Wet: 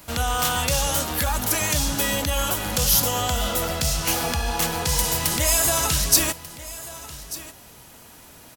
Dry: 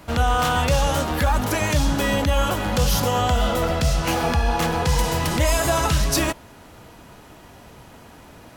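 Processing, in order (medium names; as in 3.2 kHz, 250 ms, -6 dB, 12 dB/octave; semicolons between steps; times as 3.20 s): pre-emphasis filter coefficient 0.8; delay 1190 ms -16.5 dB; trim +8 dB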